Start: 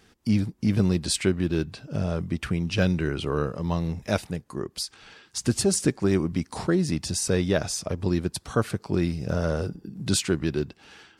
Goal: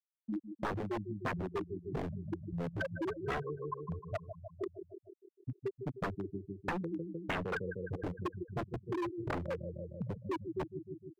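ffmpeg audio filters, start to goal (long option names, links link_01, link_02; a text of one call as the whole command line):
ffmpeg -i in.wav -filter_complex "[0:a]lowshelf=frequency=470:gain=-6.5,asplit=2[link_01][link_02];[link_02]asoftclip=type=hard:threshold=-25.5dB,volume=-8dB[link_03];[link_01][link_03]amix=inputs=2:normalize=0,aphaser=in_gain=1:out_gain=1:delay=3.1:decay=0.7:speed=1.5:type=sinusoidal,equalizer=frequency=110:width=7.4:gain=4,acrossover=split=810|2200[link_04][link_05][link_06];[link_06]acompressor=threshold=-41dB:ratio=6[link_07];[link_04][link_05][link_07]amix=inputs=3:normalize=0,afftfilt=real='re*gte(hypot(re,im),0.501)':imag='im*gte(hypot(re,im),0.501)':win_size=1024:overlap=0.75,aecho=1:1:153|306|459|612|765|918:0.224|0.132|0.0779|0.046|0.0271|0.016,aeval=exprs='0.0841*(abs(mod(val(0)/0.0841+3,4)-2)-1)':channel_layout=same,acrossover=split=140|390|1100|3500[link_08][link_09][link_10][link_11][link_12];[link_08]acompressor=threshold=-45dB:ratio=4[link_13];[link_09]acompressor=threshold=-40dB:ratio=4[link_14];[link_10]acompressor=threshold=-41dB:ratio=4[link_15];[link_11]acompressor=threshold=-36dB:ratio=4[link_16];[link_12]acompressor=threshold=-57dB:ratio=4[link_17];[link_13][link_14][link_15][link_16][link_17]amix=inputs=5:normalize=0,volume=-1.5dB" out.wav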